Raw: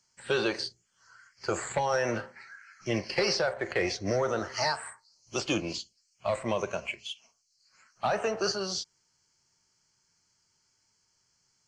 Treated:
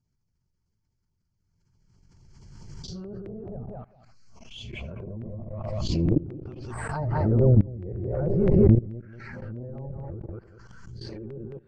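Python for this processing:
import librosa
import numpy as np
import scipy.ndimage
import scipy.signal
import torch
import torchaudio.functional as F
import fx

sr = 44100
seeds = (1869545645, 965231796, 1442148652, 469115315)

y = x[::-1].copy()
y = fx.tilt_eq(y, sr, slope=-4.0)
y = fx.echo_feedback(y, sr, ms=193, feedback_pct=16, wet_db=-8.5)
y = fx.env_lowpass_down(y, sr, base_hz=420.0, full_db=-22.5)
y = y + 10.0 ** (-19.5 / 20.0) * np.pad(y, (int(78 * sr / 1000.0), 0))[:len(y)]
y = fx.level_steps(y, sr, step_db=21)
y = fx.low_shelf(y, sr, hz=260.0, db=9.0)
y = fx.filter_lfo_notch(y, sr, shape='saw_down', hz=4.6, low_hz=410.0, high_hz=2100.0, q=2.3)
y = fx.pre_swell(y, sr, db_per_s=25.0)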